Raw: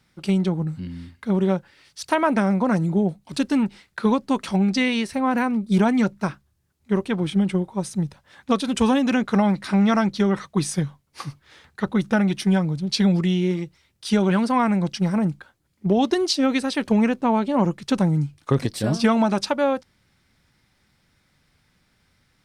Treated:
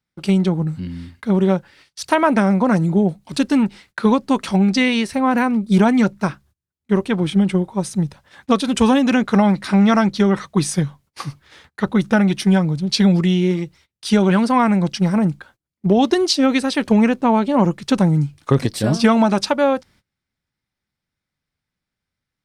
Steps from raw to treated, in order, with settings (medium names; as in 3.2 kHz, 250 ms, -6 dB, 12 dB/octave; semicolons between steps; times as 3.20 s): gate -51 dBFS, range -23 dB; trim +4.5 dB